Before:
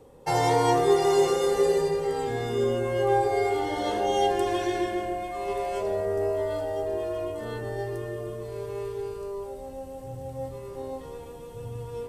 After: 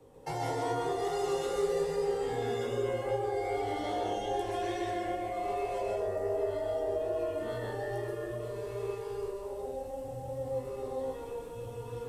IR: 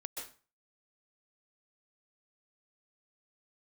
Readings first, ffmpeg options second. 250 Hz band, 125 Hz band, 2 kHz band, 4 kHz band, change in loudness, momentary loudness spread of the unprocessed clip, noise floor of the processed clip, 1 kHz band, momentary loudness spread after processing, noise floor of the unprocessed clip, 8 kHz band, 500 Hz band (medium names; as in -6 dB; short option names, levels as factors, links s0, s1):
-8.0 dB, -7.0 dB, -7.0 dB, -8.5 dB, -7.5 dB, 16 LU, -42 dBFS, -7.5 dB, 7 LU, -41 dBFS, -9.0 dB, -6.5 dB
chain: -filter_complex "[0:a]flanger=delay=16.5:depth=7.5:speed=2.5,acrossover=split=140|500[s0][s1][s2];[s0]acompressor=threshold=0.00562:ratio=4[s3];[s1]acompressor=threshold=0.0112:ratio=4[s4];[s2]acompressor=threshold=0.0141:ratio=4[s5];[s3][s4][s5]amix=inputs=3:normalize=0[s6];[1:a]atrim=start_sample=2205[s7];[s6][s7]afir=irnorm=-1:irlink=0,volume=1.33"